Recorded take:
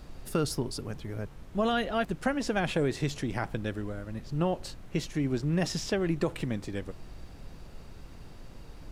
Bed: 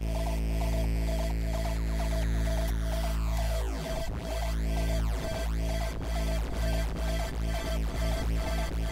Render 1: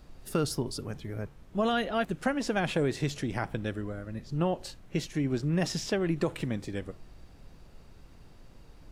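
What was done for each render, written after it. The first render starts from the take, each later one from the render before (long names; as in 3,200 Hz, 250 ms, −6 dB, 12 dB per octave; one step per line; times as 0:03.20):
noise reduction from a noise print 6 dB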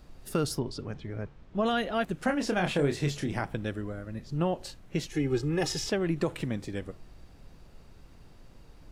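0:00.59–0:01.66: low-pass filter 4,800 Hz
0:02.25–0:03.41: double-tracking delay 28 ms −6 dB
0:05.11–0:05.89: comb filter 2.4 ms, depth 93%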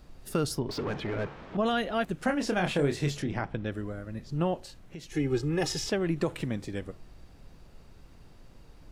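0:00.69–0:01.57: mid-hump overdrive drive 27 dB, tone 1,700 Hz, clips at −23 dBFS
0:03.22–0:03.72: high-frequency loss of the air 120 metres
0:04.60–0:05.12: downward compressor 2.5 to 1, threshold −44 dBFS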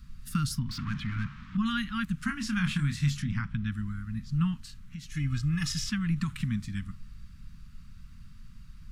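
elliptic band-stop filter 220–1,200 Hz, stop band 50 dB
low-shelf EQ 330 Hz +6 dB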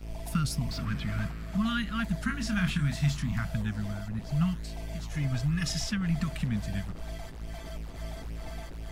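mix in bed −9.5 dB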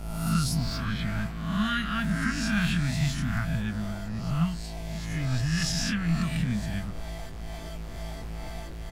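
peak hold with a rise ahead of every peak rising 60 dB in 0.88 s
double-tracking delay 24 ms −10.5 dB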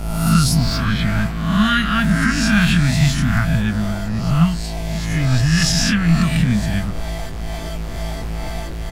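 level +11.5 dB
brickwall limiter −3 dBFS, peak gain reduction 2 dB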